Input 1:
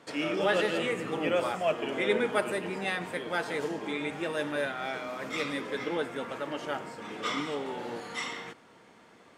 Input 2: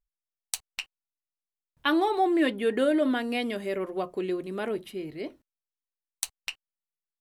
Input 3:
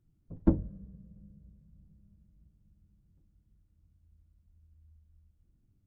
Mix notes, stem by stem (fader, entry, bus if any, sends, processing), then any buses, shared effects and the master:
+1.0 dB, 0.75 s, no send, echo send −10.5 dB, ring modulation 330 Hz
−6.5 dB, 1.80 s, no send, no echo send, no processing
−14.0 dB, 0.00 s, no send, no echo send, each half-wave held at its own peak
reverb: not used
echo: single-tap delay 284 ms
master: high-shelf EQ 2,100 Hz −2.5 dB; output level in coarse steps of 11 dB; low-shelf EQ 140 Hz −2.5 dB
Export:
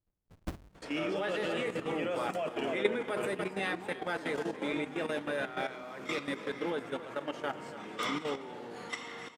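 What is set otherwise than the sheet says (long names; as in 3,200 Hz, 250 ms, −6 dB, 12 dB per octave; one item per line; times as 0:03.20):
stem 1: missing ring modulation 330 Hz
stem 2 −6.5 dB → −16.0 dB
master: missing low-shelf EQ 140 Hz −2.5 dB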